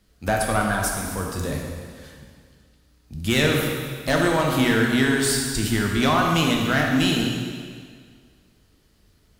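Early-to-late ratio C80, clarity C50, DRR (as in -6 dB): 3.0 dB, 1.5 dB, -0.5 dB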